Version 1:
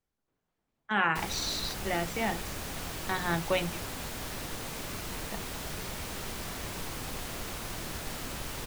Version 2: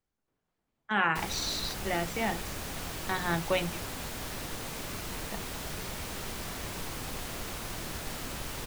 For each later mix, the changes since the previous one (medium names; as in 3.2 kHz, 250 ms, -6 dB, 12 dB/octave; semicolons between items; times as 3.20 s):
no change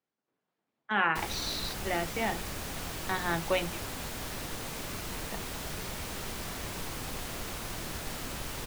speech: add band-pass 190–5100 Hz